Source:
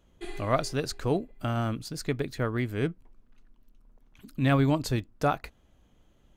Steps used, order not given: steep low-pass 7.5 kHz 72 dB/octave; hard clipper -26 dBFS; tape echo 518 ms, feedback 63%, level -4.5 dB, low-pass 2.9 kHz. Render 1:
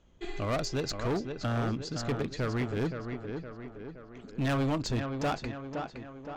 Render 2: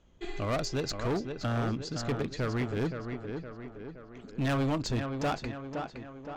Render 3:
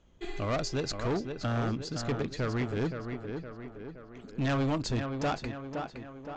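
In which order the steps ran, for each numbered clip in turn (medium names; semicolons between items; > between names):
tape echo > steep low-pass > hard clipper; steep low-pass > tape echo > hard clipper; tape echo > hard clipper > steep low-pass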